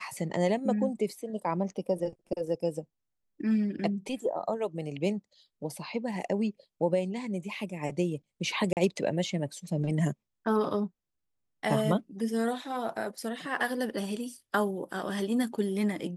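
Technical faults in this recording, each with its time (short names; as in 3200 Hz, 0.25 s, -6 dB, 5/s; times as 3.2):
8.73–8.77 gap 38 ms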